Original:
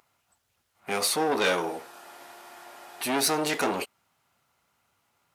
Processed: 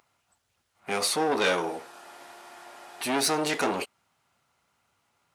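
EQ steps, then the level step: bell 14000 Hz -13 dB 0.28 oct; 0.0 dB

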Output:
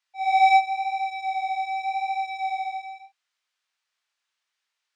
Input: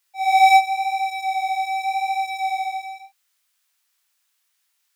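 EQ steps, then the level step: air absorption 110 m; -3.5 dB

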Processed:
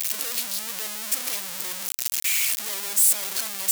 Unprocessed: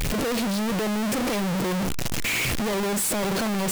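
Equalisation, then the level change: differentiator; +6.0 dB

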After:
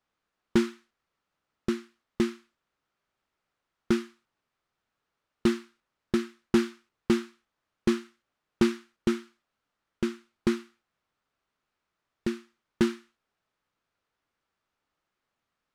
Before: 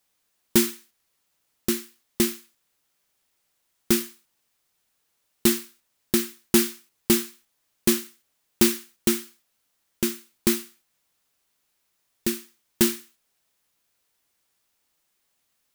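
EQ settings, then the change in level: tape spacing loss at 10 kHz 24 dB; bell 1300 Hz +5.5 dB 0.57 oct; -1.5 dB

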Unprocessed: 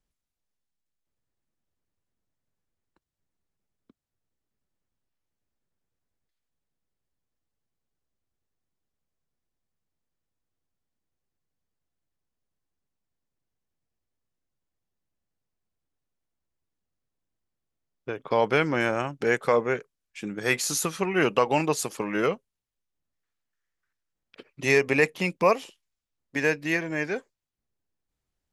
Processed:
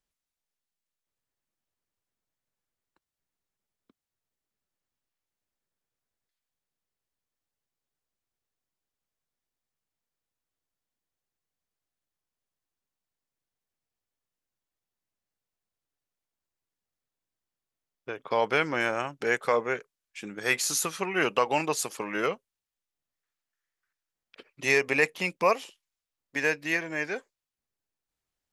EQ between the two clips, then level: low shelf 390 Hz -9.5 dB; 0.0 dB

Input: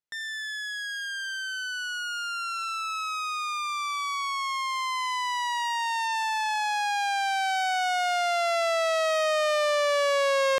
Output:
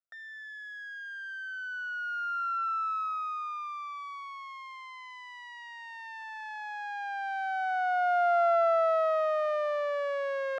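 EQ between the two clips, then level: double band-pass 960 Hz, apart 0.95 oct; +2.0 dB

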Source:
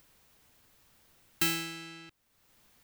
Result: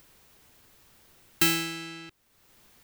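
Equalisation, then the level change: bell 380 Hz +4 dB 0.3 oct; +5.5 dB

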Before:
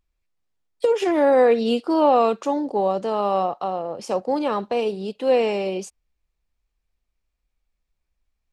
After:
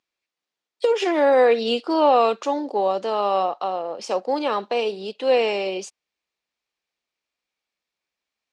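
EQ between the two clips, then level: BPF 300–4700 Hz; high shelf 2800 Hz +10.5 dB; 0.0 dB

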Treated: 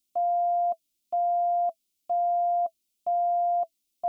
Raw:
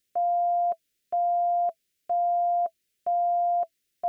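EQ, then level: fixed phaser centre 460 Hz, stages 6; 0.0 dB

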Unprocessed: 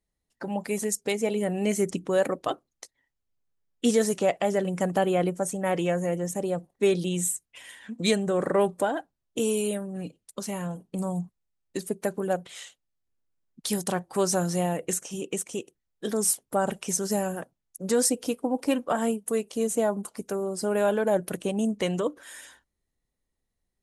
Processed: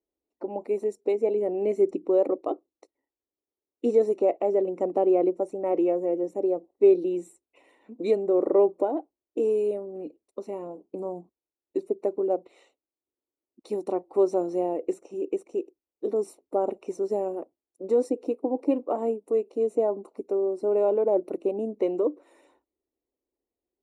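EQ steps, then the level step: running mean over 27 samples; HPF 46 Hz; resonant low shelf 230 Hz -12.5 dB, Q 3; 0.0 dB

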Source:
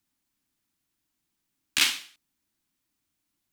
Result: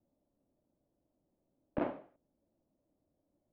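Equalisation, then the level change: ladder low-pass 630 Hz, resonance 70%; +17.5 dB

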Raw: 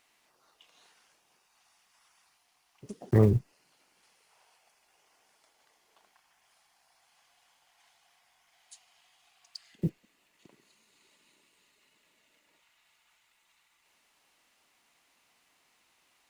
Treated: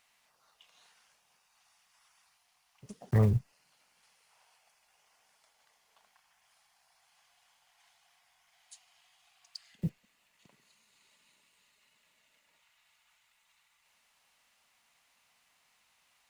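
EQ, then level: bell 340 Hz -12.5 dB 0.82 oct; -1.0 dB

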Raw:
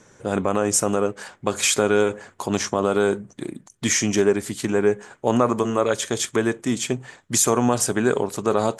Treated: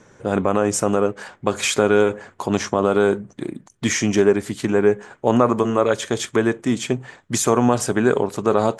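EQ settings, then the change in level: high shelf 4900 Hz -10 dB; +3.0 dB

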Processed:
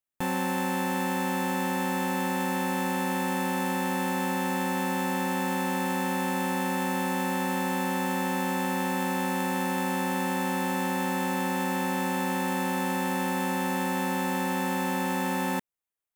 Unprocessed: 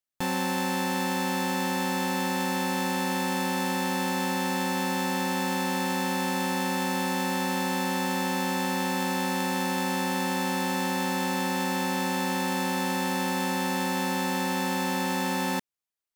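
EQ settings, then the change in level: bell 4700 Hz -9 dB 0.93 oct; 0.0 dB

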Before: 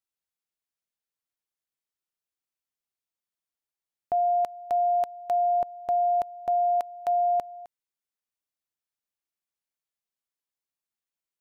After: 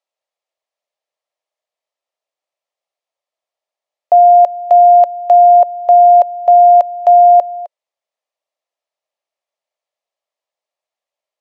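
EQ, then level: resonant high-pass 600 Hz, resonance Q 5; air absorption 78 m; notch 1500 Hz, Q 6.6; +8.0 dB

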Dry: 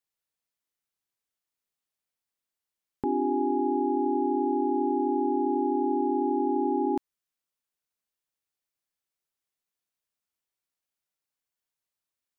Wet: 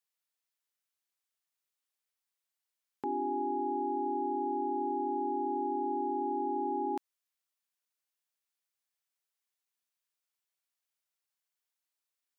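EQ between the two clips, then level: HPF 850 Hz 6 dB/oct; 0.0 dB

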